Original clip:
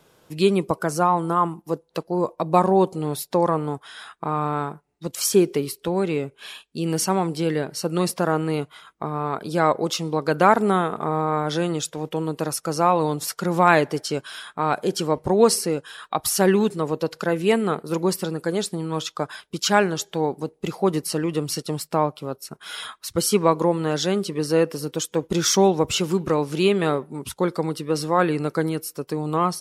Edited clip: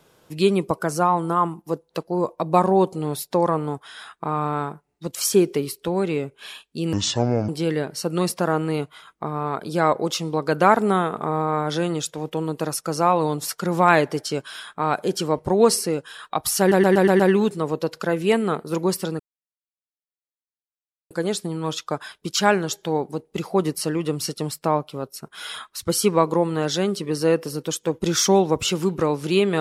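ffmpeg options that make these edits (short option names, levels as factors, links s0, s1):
-filter_complex "[0:a]asplit=9[s0][s1][s2][s3][s4][s5][s6][s7][s8];[s0]atrim=end=6.934[s9];[s1]atrim=start=6.93:end=7.28,asetpts=PTS-STARTPTS,asetrate=27783,aresample=44100[s10];[s2]atrim=start=7.276:end=16.512[s11];[s3]atrim=start=16.388:end=16.512[s12];[s4]atrim=start=16.388:end=16.512[s13];[s5]atrim=start=16.388:end=16.512[s14];[s6]atrim=start=16.388:end=16.512[s15];[s7]atrim=start=16.388:end=18.39,asetpts=PTS-STARTPTS,afade=t=out:st=1.998:d=0.004:c=hsin,apad=pad_dur=1.91[s16];[s8]atrim=start=18.39,asetpts=PTS-STARTPTS,afade=t=in:d=0.004:c=hsin[s17];[s9][s10]acrossfade=d=0.004:c1=hsin:c2=hsin[s18];[s18][s11]acrossfade=d=0.004:c1=hsin:c2=hsin[s19];[s19][s12]acrossfade=d=0.004:c1=hsin:c2=hsin[s20];[s20][s13]acrossfade=d=0.004:c1=hsin:c2=hsin[s21];[s21][s14]acrossfade=d=0.004:c1=hsin:c2=hsin[s22];[s22][s15]acrossfade=d=0.004:c1=hsin:c2=hsin[s23];[s16][s17]concat=n=2:v=0:a=1[s24];[s23][s24]acrossfade=d=0.004:c1=hsin:c2=hsin"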